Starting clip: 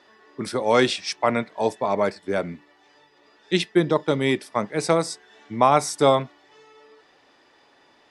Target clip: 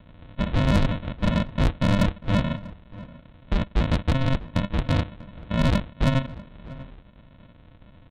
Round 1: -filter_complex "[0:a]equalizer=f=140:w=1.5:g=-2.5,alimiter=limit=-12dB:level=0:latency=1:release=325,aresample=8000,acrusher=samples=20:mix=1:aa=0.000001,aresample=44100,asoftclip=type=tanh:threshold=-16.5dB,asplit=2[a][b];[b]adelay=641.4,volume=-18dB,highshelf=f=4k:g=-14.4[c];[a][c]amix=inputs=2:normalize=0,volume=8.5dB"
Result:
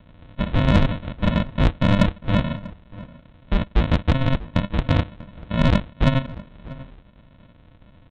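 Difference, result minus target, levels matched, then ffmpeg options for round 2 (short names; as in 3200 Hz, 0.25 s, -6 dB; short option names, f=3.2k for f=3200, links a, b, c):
soft clip: distortion -7 dB
-filter_complex "[0:a]equalizer=f=140:w=1.5:g=-2.5,alimiter=limit=-12dB:level=0:latency=1:release=325,aresample=8000,acrusher=samples=20:mix=1:aa=0.000001,aresample=44100,asoftclip=type=tanh:threshold=-23.5dB,asplit=2[a][b];[b]adelay=641.4,volume=-18dB,highshelf=f=4k:g=-14.4[c];[a][c]amix=inputs=2:normalize=0,volume=8.5dB"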